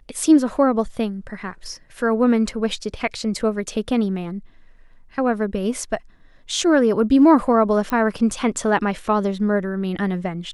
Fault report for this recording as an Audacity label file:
7.900000	7.900000	pop -12 dBFS

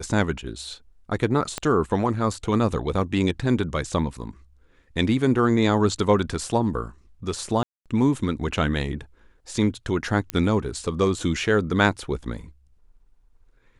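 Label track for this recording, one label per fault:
1.580000	1.580000	pop -12 dBFS
7.630000	7.860000	dropout 227 ms
10.300000	10.300000	pop -10 dBFS

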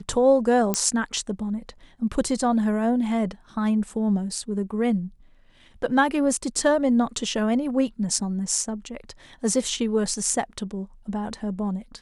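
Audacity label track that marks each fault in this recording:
0.740000	0.740000	pop -6 dBFS

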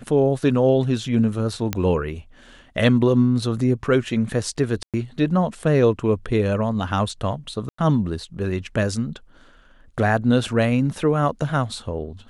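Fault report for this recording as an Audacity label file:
1.730000	1.730000	pop -7 dBFS
4.830000	4.940000	dropout 107 ms
7.690000	7.780000	dropout 94 ms

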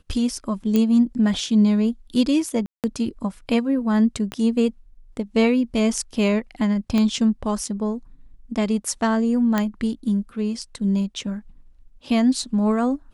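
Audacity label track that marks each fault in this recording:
0.760000	0.760000	pop -9 dBFS
2.660000	2.840000	dropout 178 ms
4.320000	4.320000	pop -15 dBFS
6.980000	6.980000	pop -11 dBFS
9.580000	9.580000	pop -8 dBFS

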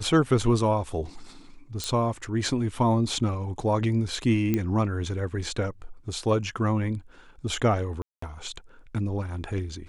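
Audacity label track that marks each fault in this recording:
1.840000	1.840000	pop -15 dBFS
4.540000	4.540000	pop -12 dBFS
8.020000	8.220000	dropout 204 ms

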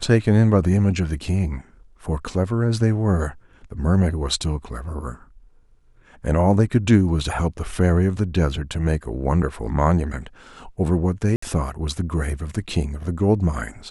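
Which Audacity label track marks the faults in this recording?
11.360000	11.420000	dropout 64 ms

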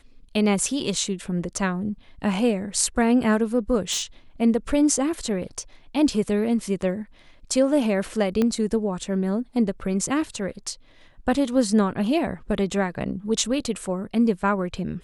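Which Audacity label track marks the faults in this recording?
3.910000	4.030000	clipped -21.5 dBFS
8.420000	8.420000	pop -11 dBFS

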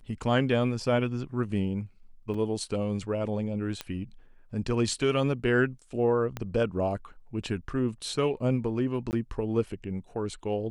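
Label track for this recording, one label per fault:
2.340000	2.340000	dropout 4.5 ms
3.810000	3.810000	pop -17 dBFS
6.370000	6.370000	pop -19 dBFS
9.110000	9.130000	dropout 19 ms

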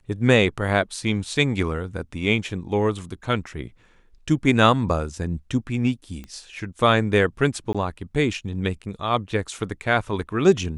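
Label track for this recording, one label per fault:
6.240000	6.240000	pop -24 dBFS
7.730000	7.750000	dropout 16 ms

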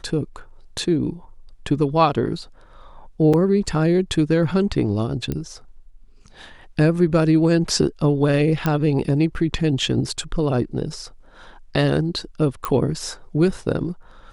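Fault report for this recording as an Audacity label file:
0.780000	0.780000	dropout 4.7 ms
3.330000	3.340000	dropout 5.8 ms
5.320000	5.320000	pop -13 dBFS
8.660000	8.660000	pop -8 dBFS
12.650000	12.650000	pop -10 dBFS

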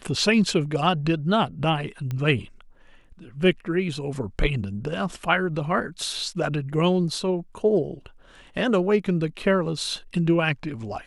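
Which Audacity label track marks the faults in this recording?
2.110000	2.110000	pop -18 dBFS

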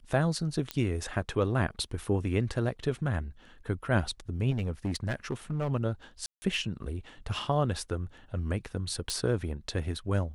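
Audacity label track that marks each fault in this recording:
0.710000	0.710000	pop -16 dBFS
4.500000	5.720000	clipped -26 dBFS
6.260000	6.420000	dropout 160 ms
9.100000	9.100000	pop

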